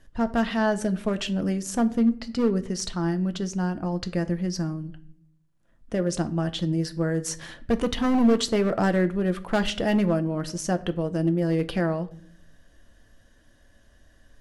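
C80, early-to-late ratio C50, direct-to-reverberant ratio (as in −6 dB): 21.5 dB, 18.0 dB, 9.0 dB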